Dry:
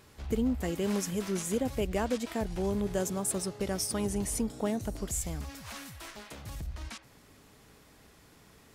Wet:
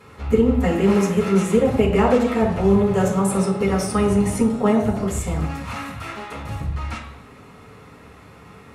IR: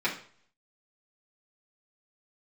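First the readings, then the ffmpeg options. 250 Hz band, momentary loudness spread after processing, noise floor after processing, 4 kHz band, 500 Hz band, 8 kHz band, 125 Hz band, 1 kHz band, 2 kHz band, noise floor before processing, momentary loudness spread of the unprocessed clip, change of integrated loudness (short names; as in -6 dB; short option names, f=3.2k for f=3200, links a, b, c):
+14.0 dB, 13 LU, -45 dBFS, +5.5 dB, +14.5 dB, +2.0 dB, +14.5 dB, +15.5 dB, +12.5 dB, -59 dBFS, 12 LU, +13.0 dB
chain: -filter_complex "[1:a]atrim=start_sample=2205,asetrate=23814,aresample=44100[a];[0:a][a]afir=irnorm=-1:irlink=0"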